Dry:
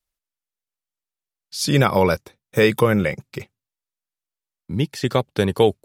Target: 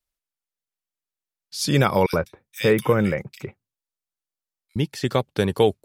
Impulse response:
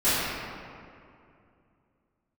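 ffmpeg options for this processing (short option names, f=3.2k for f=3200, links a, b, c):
-filter_complex "[0:a]asettb=1/sr,asplit=3[a][b][c];[a]atrim=end=2.064[d];[b]atrim=start=2.06:end=4.76,asetpts=PTS-STARTPTS,afade=t=in:d=0.004:c=qsin,afade=t=out:st=2.696:d=0.004:c=qsin,acrossover=split=2300[e][f];[e]adelay=70[g];[g][f]amix=inputs=2:normalize=0,atrim=end_sample=119070[h];[c]atrim=start=4.756[i];[d][h]acrossfade=d=0.004:c1=hsin:c2=qsin[j];[j][i]acrossfade=d=0.004:c1=qsin:c2=hsin,volume=-2dB"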